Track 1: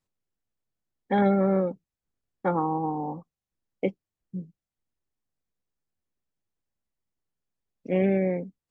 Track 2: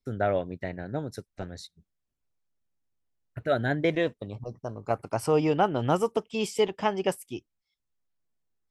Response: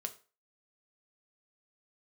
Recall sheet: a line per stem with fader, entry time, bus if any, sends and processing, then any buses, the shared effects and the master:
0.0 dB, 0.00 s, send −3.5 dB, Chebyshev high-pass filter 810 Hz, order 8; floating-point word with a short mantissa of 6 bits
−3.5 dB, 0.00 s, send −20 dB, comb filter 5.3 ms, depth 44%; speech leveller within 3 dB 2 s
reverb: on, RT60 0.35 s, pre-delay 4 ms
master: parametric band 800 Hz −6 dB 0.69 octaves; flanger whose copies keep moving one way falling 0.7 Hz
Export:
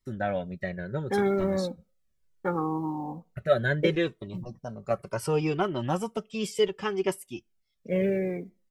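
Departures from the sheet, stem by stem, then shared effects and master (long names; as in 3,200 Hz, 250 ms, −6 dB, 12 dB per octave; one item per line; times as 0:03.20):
stem 1: missing Chebyshev high-pass filter 810 Hz, order 8
stem 2 −3.5 dB → +3.0 dB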